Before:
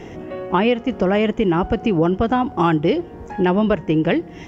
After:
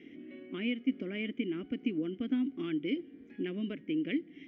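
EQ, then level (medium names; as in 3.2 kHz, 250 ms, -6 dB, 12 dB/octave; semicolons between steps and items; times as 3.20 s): vowel filter i; distance through air 89 m; bass shelf 260 Hz -7 dB; -1.5 dB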